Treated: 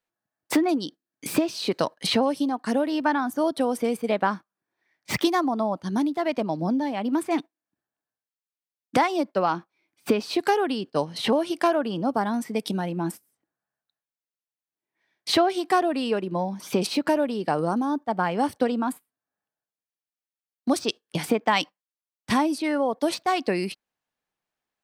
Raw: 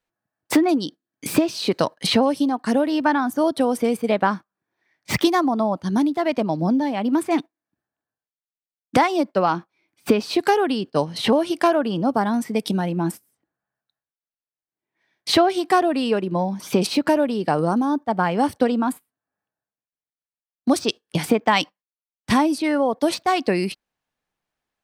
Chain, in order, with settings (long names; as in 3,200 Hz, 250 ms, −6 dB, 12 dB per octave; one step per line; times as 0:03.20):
low-shelf EQ 110 Hz −8 dB
level −3.5 dB